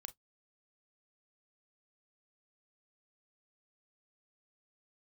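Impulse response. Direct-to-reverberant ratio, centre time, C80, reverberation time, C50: 10.0 dB, 5 ms, 41.5 dB, 0.10 s, 23.0 dB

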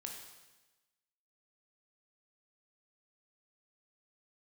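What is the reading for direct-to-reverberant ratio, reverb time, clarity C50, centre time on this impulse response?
1.0 dB, 1.1 s, 4.0 dB, 43 ms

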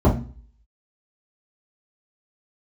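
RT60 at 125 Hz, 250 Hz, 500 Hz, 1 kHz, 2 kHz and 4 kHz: 0.50, 0.45, 0.40, 0.35, 0.35, 0.40 seconds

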